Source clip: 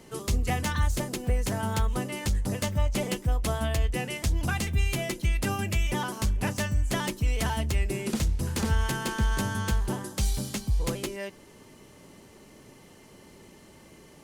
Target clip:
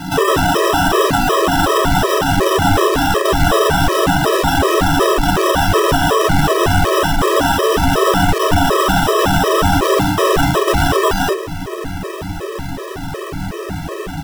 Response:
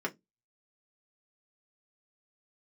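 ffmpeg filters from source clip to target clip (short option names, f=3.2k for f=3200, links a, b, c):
-filter_complex "[0:a]aeval=exprs='(mod(28.2*val(0)+1,2)-1)/28.2':c=same,asubboost=boost=4:cutoff=110,acrusher=samples=20:mix=1:aa=0.000001,aecho=1:1:11|47:0.473|0.447,asplit=2[a][b];[1:a]atrim=start_sample=2205[c];[b][c]afir=irnorm=-1:irlink=0,volume=-5.5dB[d];[a][d]amix=inputs=2:normalize=0,alimiter=level_in=26.5dB:limit=-1dB:release=50:level=0:latency=1,afftfilt=real='re*gt(sin(2*PI*2.7*pts/sr)*(1-2*mod(floor(b*sr/1024/330),2)),0)':imag='im*gt(sin(2*PI*2.7*pts/sr)*(1-2*mod(floor(b*sr/1024/330),2)),0)':win_size=1024:overlap=0.75,volume=-1.5dB"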